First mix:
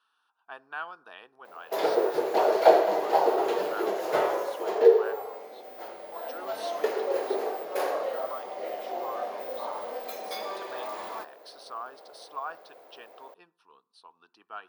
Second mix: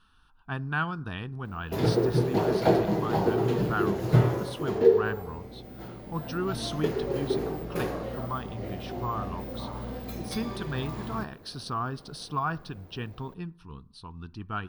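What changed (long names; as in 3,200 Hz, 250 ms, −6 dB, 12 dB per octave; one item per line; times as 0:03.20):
background −11.5 dB
master: remove four-pole ladder high-pass 480 Hz, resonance 40%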